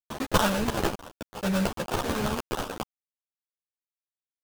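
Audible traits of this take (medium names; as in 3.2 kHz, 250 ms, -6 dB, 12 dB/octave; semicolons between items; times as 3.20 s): a quantiser's noise floor 6-bit, dither none; tremolo triangle 0.71 Hz, depth 60%; aliases and images of a low sample rate 2.1 kHz, jitter 20%; a shimmering, thickened sound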